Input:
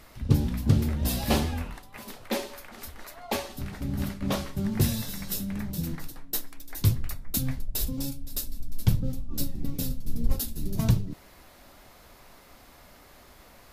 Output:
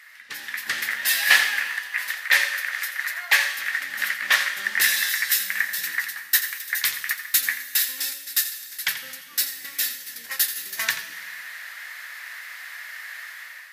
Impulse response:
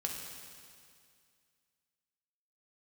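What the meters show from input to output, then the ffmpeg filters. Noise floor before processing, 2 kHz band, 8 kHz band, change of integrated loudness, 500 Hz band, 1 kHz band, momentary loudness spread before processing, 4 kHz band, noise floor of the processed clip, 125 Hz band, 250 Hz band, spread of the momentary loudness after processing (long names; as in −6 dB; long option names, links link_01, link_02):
−53 dBFS, +23.0 dB, +11.0 dB, +7.5 dB, −10.0 dB, +4.0 dB, 15 LU, +12.5 dB, −42 dBFS, below −35 dB, below −20 dB, 17 LU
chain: -filter_complex "[0:a]highpass=frequency=1800:width_type=q:width=7.6,dynaudnorm=framelen=210:gausssize=5:maxgain=11dB,asplit=2[link_01][link_02];[1:a]atrim=start_sample=2205,asetrate=48510,aresample=44100,adelay=85[link_03];[link_02][link_03]afir=irnorm=-1:irlink=0,volume=-10dB[link_04];[link_01][link_04]amix=inputs=2:normalize=0"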